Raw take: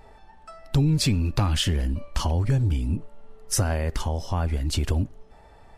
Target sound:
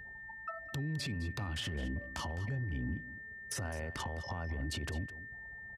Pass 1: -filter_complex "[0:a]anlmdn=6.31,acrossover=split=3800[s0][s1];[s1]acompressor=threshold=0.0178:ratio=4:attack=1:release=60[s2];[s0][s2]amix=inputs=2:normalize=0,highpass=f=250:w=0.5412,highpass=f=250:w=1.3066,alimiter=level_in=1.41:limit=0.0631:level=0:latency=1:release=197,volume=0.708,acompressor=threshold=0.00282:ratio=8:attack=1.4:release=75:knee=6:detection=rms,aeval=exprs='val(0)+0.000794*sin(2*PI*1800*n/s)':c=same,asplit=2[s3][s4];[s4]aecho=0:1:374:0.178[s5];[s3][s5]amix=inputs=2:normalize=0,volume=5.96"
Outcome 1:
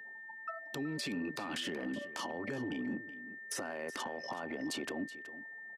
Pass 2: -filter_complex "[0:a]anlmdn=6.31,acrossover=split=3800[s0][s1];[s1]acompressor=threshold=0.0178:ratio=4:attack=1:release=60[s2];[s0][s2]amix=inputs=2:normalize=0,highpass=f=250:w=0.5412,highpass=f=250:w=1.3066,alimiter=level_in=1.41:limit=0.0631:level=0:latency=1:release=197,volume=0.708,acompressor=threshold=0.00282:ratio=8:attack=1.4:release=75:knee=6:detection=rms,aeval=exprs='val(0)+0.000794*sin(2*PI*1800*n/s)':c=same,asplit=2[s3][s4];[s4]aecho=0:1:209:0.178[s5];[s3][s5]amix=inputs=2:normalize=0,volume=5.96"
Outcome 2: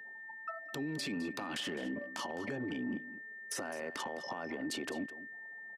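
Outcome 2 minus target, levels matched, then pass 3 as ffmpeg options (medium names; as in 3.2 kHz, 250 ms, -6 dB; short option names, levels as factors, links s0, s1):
125 Hz band -13.0 dB
-filter_complex "[0:a]anlmdn=6.31,acrossover=split=3800[s0][s1];[s1]acompressor=threshold=0.0178:ratio=4:attack=1:release=60[s2];[s0][s2]amix=inputs=2:normalize=0,highpass=f=81:w=0.5412,highpass=f=81:w=1.3066,alimiter=level_in=1.41:limit=0.0631:level=0:latency=1:release=197,volume=0.708,acompressor=threshold=0.00282:ratio=8:attack=1.4:release=75:knee=6:detection=rms,aeval=exprs='val(0)+0.000794*sin(2*PI*1800*n/s)':c=same,asplit=2[s3][s4];[s4]aecho=0:1:209:0.178[s5];[s3][s5]amix=inputs=2:normalize=0,volume=5.96"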